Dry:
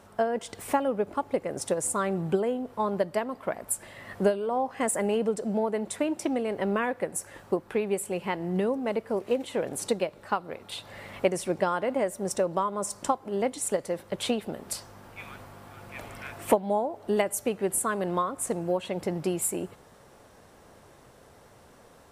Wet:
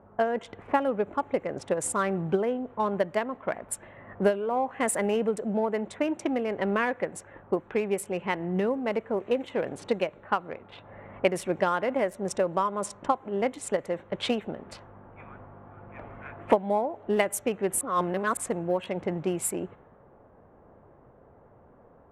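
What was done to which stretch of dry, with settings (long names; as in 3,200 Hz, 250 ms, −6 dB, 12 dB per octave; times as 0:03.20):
0:17.81–0:18.37: reverse
whole clip: adaptive Wiener filter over 9 samples; dynamic equaliser 2,100 Hz, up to +5 dB, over −42 dBFS, Q 0.87; low-pass that shuts in the quiet parts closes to 1,000 Hz, open at −24 dBFS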